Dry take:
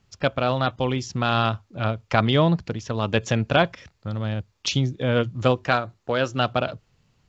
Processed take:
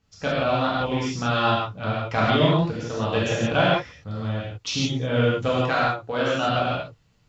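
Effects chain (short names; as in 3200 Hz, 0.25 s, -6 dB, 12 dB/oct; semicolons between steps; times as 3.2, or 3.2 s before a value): non-linear reverb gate 0.19 s flat, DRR -7.5 dB; gain -7.5 dB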